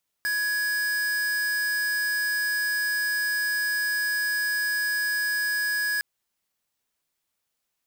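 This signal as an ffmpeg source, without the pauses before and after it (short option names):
-f lavfi -i "aevalsrc='0.0501*(2*lt(mod(1670*t,1),0.5)-1)':d=5.76:s=44100"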